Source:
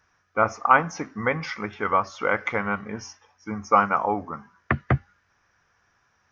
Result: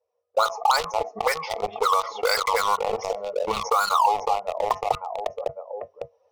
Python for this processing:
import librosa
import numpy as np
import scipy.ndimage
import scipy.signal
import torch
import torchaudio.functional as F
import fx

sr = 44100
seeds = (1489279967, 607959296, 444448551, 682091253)

y = fx.bin_expand(x, sr, power=1.5)
y = fx.recorder_agc(y, sr, target_db=-11.5, rise_db_per_s=10.0, max_gain_db=30)
y = scipy.signal.sosfilt(scipy.signal.butter(4, 53.0, 'highpass', fs=sr, output='sos'), y)
y = fx.peak_eq(y, sr, hz=470.0, db=10.5, octaves=0.29)
y = fx.comb_fb(y, sr, f0_hz=95.0, decay_s=0.16, harmonics='odd', damping=0.0, mix_pct=40)
y = fx.echo_feedback(y, sr, ms=553, feedback_pct=36, wet_db=-16)
y = fx.auto_wah(y, sr, base_hz=530.0, top_hz=1600.0, q=11.0, full_db=-17.5, direction='up')
y = fx.leveller(y, sr, passes=3)
y = fx.peak_eq(y, sr, hz=140.0, db=-7.0, octaves=1.7)
y = fx.fixed_phaser(y, sr, hz=660.0, stages=4)
y = fx.env_flatten(y, sr, amount_pct=70)
y = F.gain(torch.from_numpy(y), 7.5).numpy()